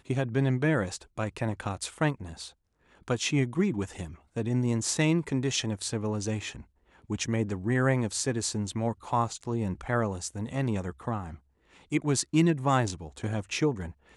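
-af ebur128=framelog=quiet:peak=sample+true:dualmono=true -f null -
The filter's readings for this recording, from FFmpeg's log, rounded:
Integrated loudness:
  I:         -26.4 LUFS
  Threshold: -36.9 LUFS
Loudness range:
  LRA:         2.6 LU
  Threshold: -47.1 LUFS
  LRA low:   -28.6 LUFS
  LRA high:  -26.0 LUFS
Sample peak:
  Peak:       -9.1 dBFS
True peak:
  Peak:       -9.0 dBFS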